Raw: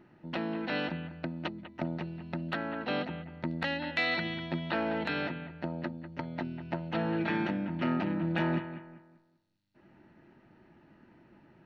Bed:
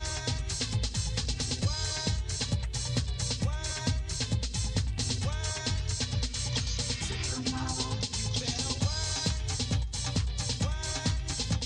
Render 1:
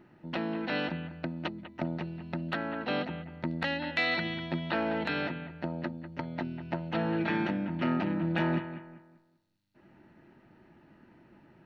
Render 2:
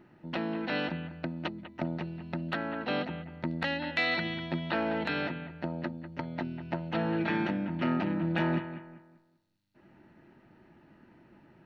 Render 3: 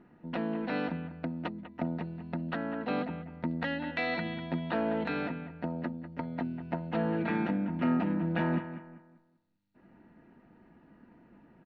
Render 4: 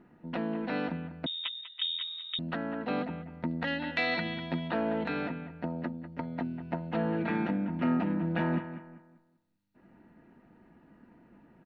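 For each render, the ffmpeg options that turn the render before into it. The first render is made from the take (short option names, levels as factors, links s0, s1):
-af "volume=1.12"
-af anull
-af "lowpass=f=1500:p=1,aecho=1:1:4.2:0.4"
-filter_complex "[0:a]asettb=1/sr,asplit=3[s0][s1][s2];[s0]atrim=end=1.264[s3];[s1]atrim=start=1.26:end=2.39,asetpts=PTS-STARTPTS,afade=t=in:d=0.004:c=qsin,afade=t=out:st=1.126:d=0.004:c=qsin,lowpass=f=3300:t=q:w=0.5098,lowpass=f=3300:t=q:w=0.6013,lowpass=f=3300:t=q:w=0.9,lowpass=f=3300:t=q:w=2.563,afreqshift=-3900[s4];[s2]atrim=start=2.386[s5];[s3][s4]acrossfade=d=0.004:c1=hsin:c2=qsin[s6];[s6][s5]acrossfade=d=0.004:c1=qsin:c2=hsin,asettb=1/sr,asplit=3[s7][s8][s9];[s7]atrim=end=3.674[s10];[s8]atrim=start=3.67:end=4.68,asetpts=PTS-STARTPTS,afade=t=in:d=0.004:c=qsin,afade=t=out:st=1.006:d=0.004:c=qsin,highshelf=f=2500:g=8.5[s11];[s9]atrim=start=4.676[s12];[s10][s11]acrossfade=d=0.004:c1=hsin:c2=qsin[s13];[s13][s12]acrossfade=d=0.004:c1=qsin:c2=hsin"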